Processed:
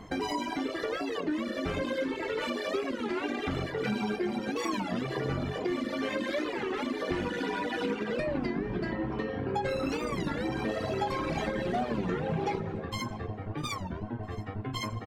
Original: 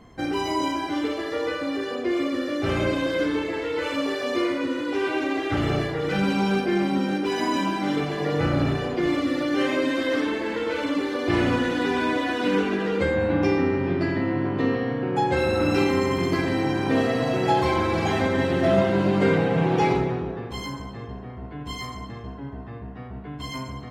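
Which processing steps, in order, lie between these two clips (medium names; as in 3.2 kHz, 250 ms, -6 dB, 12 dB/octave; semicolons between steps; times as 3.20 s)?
reverb removal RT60 1.4 s; compression 4:1, threshold -34 dBFS, peak gain reduction 15 dB; granular stretch 0.63×, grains 20 ms; on a send: feedback delay 654 ms, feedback 37%, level -20 dB; on the sum: warped record 33 1/3 rpm, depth 250 cents; trim +5 dB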